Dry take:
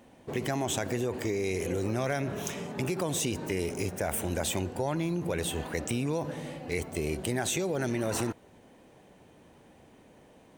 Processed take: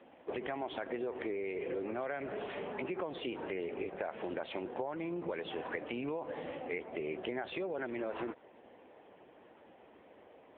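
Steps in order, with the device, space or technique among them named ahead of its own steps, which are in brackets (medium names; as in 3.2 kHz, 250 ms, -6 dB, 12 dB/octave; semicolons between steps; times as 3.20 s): 1.84–3.39 s: high-pass 79 Hz 24 dB/octave; voicemail (band-pass 360–2800 Hz; compression 6:1, threshold -37 dBFS, peak gain reduction 9.5 dB; trim +3.5 dB; AMR-NB 6.7 kbps 8 kHz)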